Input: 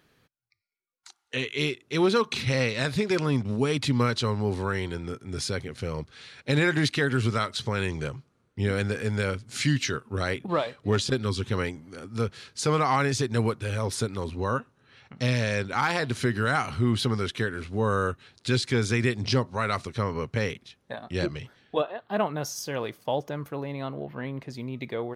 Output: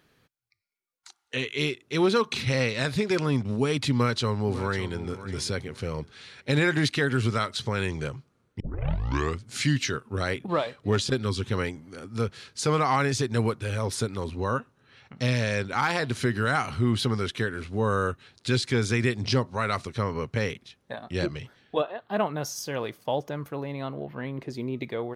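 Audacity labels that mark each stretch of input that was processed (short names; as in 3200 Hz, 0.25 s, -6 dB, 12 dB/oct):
3.920000	4.990000	echo throw 0.55 s, feedback 25%, level -13.5 dB
8.600000	8.600000	tape start 0.83 s
24.380000	24.830000	bell 360 Hz +8.5 dB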